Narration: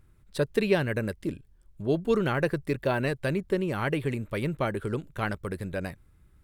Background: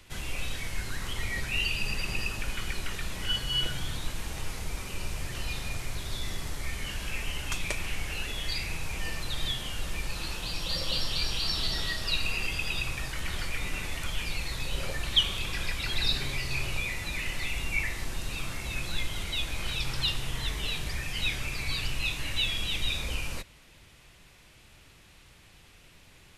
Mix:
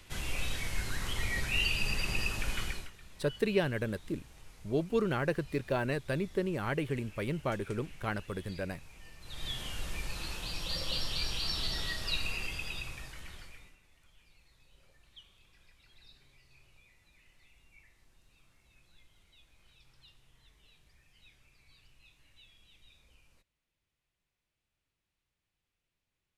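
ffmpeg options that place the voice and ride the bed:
-filter_complex "[0:a]adelay=2850,volume=-5dB[a];[1:a]volume=14dB,afade=t=out:st=2.61:d=0.3:silence=0.11885,afade=t=in:st=9.2:d=0.41:silence=0.177828,afade=t=out:st=12.15:d=1.62:silence=0.0446684[b];[a][b]amix=inputs=2:normalize=0"

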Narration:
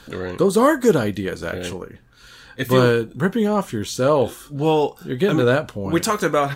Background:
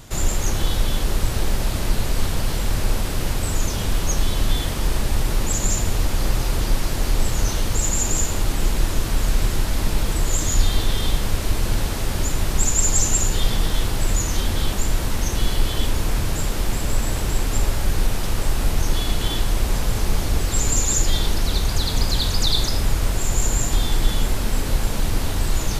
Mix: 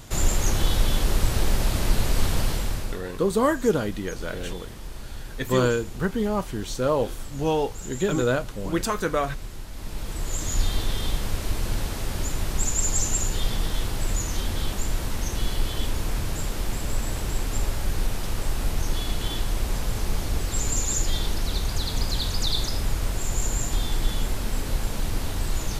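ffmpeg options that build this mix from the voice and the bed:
-filter_complex "[0:a]adelay=2800,volume=-6dB[a];[1:a]volume=10dB,afade=t=out:st=2.4:d=0.6:silence=0.16788,afade=t=in:st=9.72:d=0.92:silence=0.281838[b];[a][b]amix=inputs=2:normalize=0"

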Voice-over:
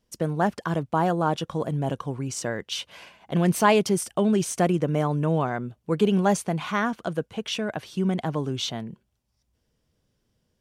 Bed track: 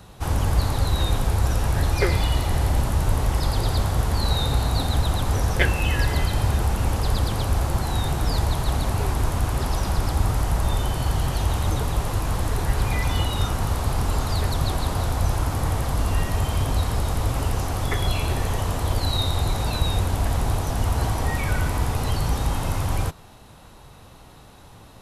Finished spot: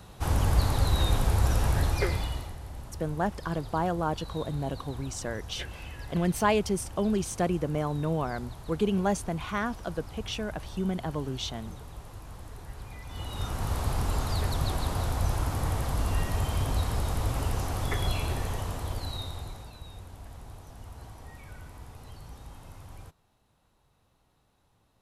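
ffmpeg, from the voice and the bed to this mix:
-filter_complex "[0:a]adelay=2800,volume=-5.5dB[a];[1:a]volume=11.5dB,afade=t=out:st=1.68:d=0.88:silence=0.141254,afade=t=in:st=13.07:d=0.71:silence=0.188365,afade=t=out:st=18.07:d=1.66:silence=0.141254[b];[a][b]amix=inputs=2:normalize=0"

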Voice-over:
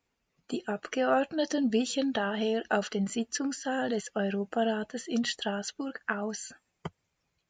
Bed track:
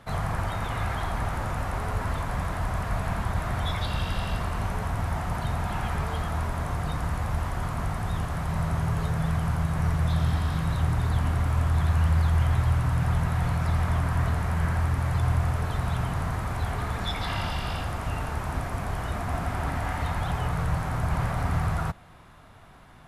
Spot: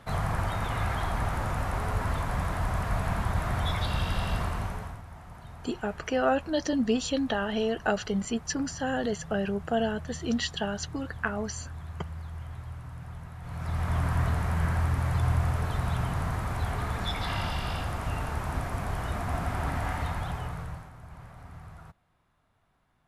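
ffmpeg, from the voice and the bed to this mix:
-filter_complex "[0:a]adelay=5150,volume=1dB[a];[1:a]volume=15dB,afade=t=out:st=4.42:d=0.6:silence=0.149624,afade=t=in:st=13.42:d=0.62:silence=0.16788,afade=t=out:st=19.89:d=1.03:silence=0.11885[b];[a][b]amix=inputs=2:normalize=0"

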